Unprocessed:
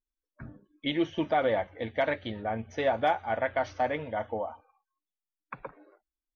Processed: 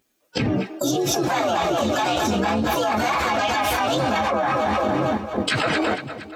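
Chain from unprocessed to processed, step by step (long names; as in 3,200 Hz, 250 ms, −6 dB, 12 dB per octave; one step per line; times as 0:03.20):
partials spread apart or drawn together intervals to 124%
high-pass filter 140 Hz 12 dB per octave
notch filter 970 Hz, Q 6.6
echo with a time of its own for lows and highs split 420 Hz, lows 514 ms, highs 230 ms, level −14 dB
noise gate −59 dBFS, range −9 dB
low-shelf EQ 240 Hz +2.5 dB
pitch-shifted copies added +4 semitones −10 dB, +12 semitones −10 dB
envelope flattener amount 100%
level +1.5 dB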